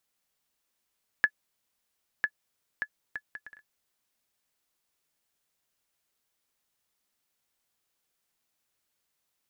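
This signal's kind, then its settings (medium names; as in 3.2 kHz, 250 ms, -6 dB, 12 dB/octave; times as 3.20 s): bouncing ball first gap 1.00 s, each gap 0.58, 1.71 kHz, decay 63 ms -10.5 dBFS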